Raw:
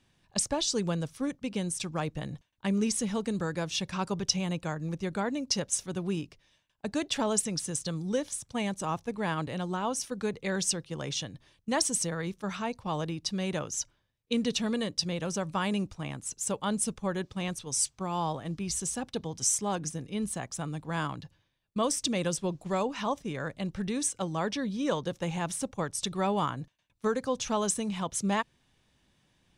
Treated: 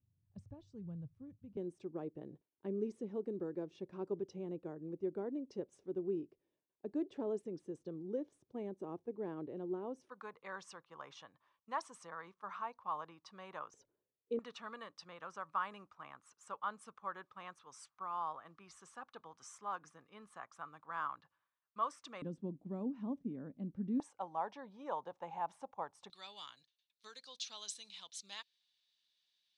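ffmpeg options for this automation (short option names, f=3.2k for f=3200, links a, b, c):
-af "asetnsamples=n=441:p=0,asendcmd='1.57 bandpass f 370;10.09 bandpass f 1100;13.74 bandpass f 420;14.39 bandpass f 1200;22.22 bandpass f 250;24 bandpass f 860;26.1 bandpass f 4100',bandpass=f=100:t=q:w=4.2:csg=0"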